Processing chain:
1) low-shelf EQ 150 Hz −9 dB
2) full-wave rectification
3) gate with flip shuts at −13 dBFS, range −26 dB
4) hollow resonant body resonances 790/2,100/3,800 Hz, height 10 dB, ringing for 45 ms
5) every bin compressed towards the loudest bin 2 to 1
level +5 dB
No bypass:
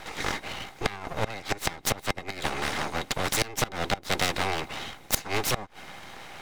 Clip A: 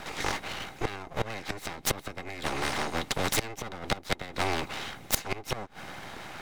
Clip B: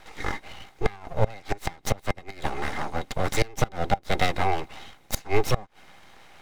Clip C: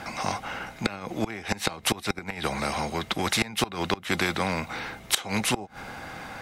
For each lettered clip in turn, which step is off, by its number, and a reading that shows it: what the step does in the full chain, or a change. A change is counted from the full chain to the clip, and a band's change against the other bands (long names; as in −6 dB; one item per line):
1, 250 Hz band +1.5 dB
5, 8 kHz band −8.0 dB
2, change in crest factor −2.0 dB